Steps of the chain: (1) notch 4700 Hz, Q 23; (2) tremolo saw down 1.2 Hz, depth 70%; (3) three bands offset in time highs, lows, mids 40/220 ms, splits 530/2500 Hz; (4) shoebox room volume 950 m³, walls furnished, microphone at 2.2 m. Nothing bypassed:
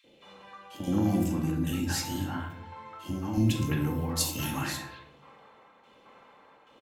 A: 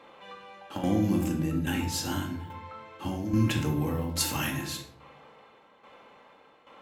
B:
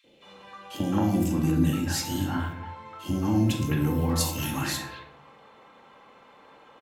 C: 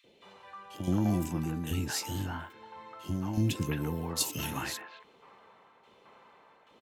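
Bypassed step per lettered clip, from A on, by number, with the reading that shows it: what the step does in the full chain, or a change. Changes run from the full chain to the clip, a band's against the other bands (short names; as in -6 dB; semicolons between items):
3, echo-to-direct 11.0 dB to -1.0 dB; 2, momentary loudness spread change -2 LU; 4, echo-to-direct 11.0 dB to 8.5 dB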